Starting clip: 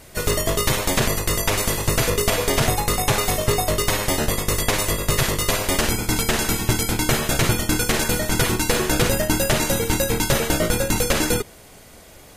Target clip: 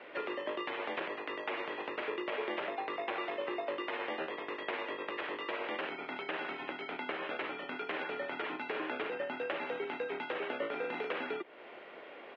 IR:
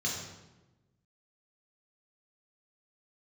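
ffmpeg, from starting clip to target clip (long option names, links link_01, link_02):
-filter_complex "[0:a]acompressor=threshold=-31dB:ratio=5,highpass=frequency=390:width_type=q:width=0.5412,highpass=frequency=390:width_type=q:width=1.307,lowpass=frequency=3000:width_type=q:width=0.5176,lowpass=frequency=3000:width_type=q:width=0.7071,lowpass=frequency=3000:width_type=q:width=1.932,afreqshift=-54,asplit=3[link_01][link_02][link_03];[link_01]afade=type=out:start_time=10.7:duration=0.02[link_04];[link_02]asplit=2[link_05][link_06];[link_06]adelay=40,volume=-2.5dB[link_07];[link_05][link_07]amix=inputs=2:normalize=0,afade=type=in:start_time=10.7:duration=0.02,afade=type=out:start_time=11.11:duration=0.02[link_08];[link_03]afade=type=in:start_time=11.11:duration=0.02[link_09];[link_04][link_08][link_09]amix=inputs=3:normalize=0"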